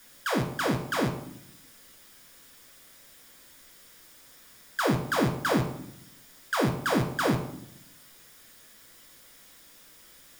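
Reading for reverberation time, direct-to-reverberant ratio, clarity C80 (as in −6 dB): 0.70 s, 0.5 dB, 11.5 dB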